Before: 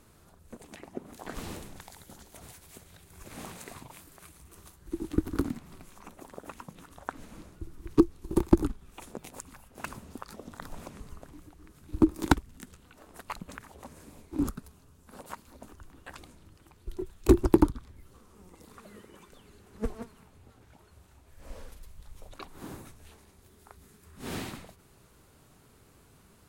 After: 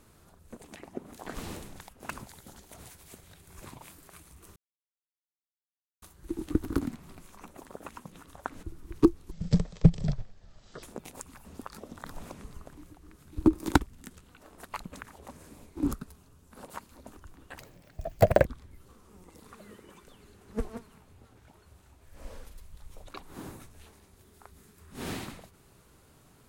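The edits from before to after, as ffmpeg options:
-filter_complex "[0:a]asplit=11[a][b][c][d][e][f][g][h][i][j][k];[a]atrim=end=1.892[l];[b]atrim=start=9.638:end=10.012[m];[c]atrim=start=1.888:end=3.292[n];[d]atrim=start=3.748:end=4.65,asetpts=PTS-STARTPTS,afade=t=out:st=0.898:d=0.004:c=hsin,apad=pad_dur=1.46[o];[e]atrim=start=4.65:end=7.262,asetpts=PTS-STARTPTS,afade=t=in:d=0.004:c=hsin[p];[f]atrim=start=7.578:end=8.264[q];[g]atrim=start=8.26:end=9.02,asetpts=PTS-STARTPTS,asetrate=22050,aresample=44100[r];[h]atrim=start=9.016:end=9.642[s];[i]atrim=start=10.008:end=16.144[t];[j]atrim=start=16.14:end=17.71,asetpts=PTS-STARTPTS,asetrate=78939,aresample=44100[u];[k]atrim=start=17.706[v];[l][m]acrossfade=d=0.004:c1=hsin:c2=hsin[w];[w][n]acrossfade=d=0.004:c1=hsin:c2=hsin[x];[o][p]concat=n=2:v=0:a=1[y];[x][y]acrossfade=d=0.004:c1=hsin:c2=hsin[z];[z][q]acrossfade=d=0.004:c1=hsin:c2=hsin[aa];[aa][r]acrossfade=d=0.004:c1=hsin:c2=hsin[ab];[ab][s]acrossfade=d=0.004:c1=hsin:c2=hsin[ac];[ac][t]acrossfade=d=0.004:c1=hsin:c2=hsin[ad];[ad][u]acrossfade=d=0.004:c1=hsin:c2=hsin[ae];[ae][v]acrossfade=d=0.004:c1=hsin:c2=hsin"

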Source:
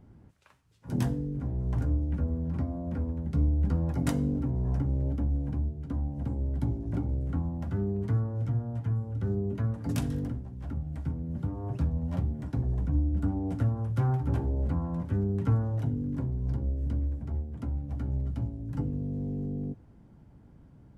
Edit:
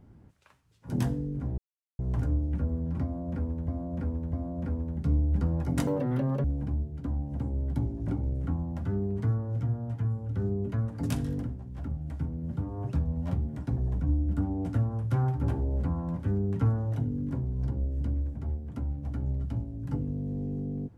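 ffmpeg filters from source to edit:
-filter_complex "[0:a]asplit=6[a][b][c][d][e][f];[a]atrim=end=1.58,asetpts=PTS-STARTPTS,afade=t=out:st=1.576:d=0.004:c=hsin,apad=pad_dur=0.41[g];[b]atrim=start=1.58:end=3.272,asetpts=PTS-STARTPTS,afade=t=in:d=0.004:c=hsin[h];[c]atrim=start=2.618:end=3.272[i];[d]atrim=start=2.618:end=4.164[j];[e]atrim=start=4.16:end=5.3,asetpts=PTS-STARTPTS,asetrate=87759,aresample=44100,atrim=end_sample=25263,asetpts=PTS-STARTPTS[k];[f]atrim=start=5.296[l];[g][h]concat=n=2:v=0:a=1[m];[m][i]acrossfade=d=0.004:c1=hsin:c2=hsin[n];[n][j]acrossfade=d=0.004:c1=hsin:c2=hsin[o];[o][k]acrossfade=d=0.004:c1=hsin:c2=hsin[p];[p][l]acrossfade=d=0.004:c1=hsin:c2=hsin"

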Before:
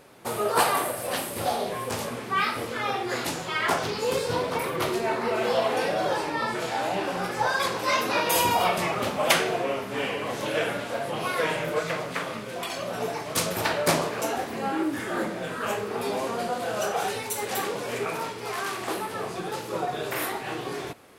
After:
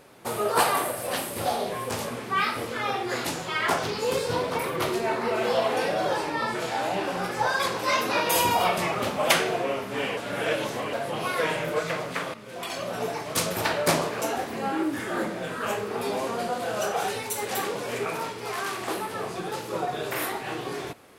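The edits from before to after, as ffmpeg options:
-filter_complex "[0:a]asplit=4[a][b][c][d];[a]atrim=end=10.172[e];[b]atrim=start=10.168:end=10.932,asetpts=PTS-STARTPTS,areverse[f];[c]atrim=start=10.928:end=12.34,asetpts=PTS-STARTPTS,afade=t=out:st=1.408:d=0.004:c=hsin:silence=0.237137[g];[d]atrim=start=12.34,asetpts=PTS-STARTPTS,afade=t=in:d=0.39:silence=0.237137[h];[e][f]acrossfade=d=0.004:c1=hsin:c2=hsin[i];[g][h]concat=n=2:v=0:a=1[j];[i][j]acrossfade=d=0.004:c1=hsin:c2=hsin"

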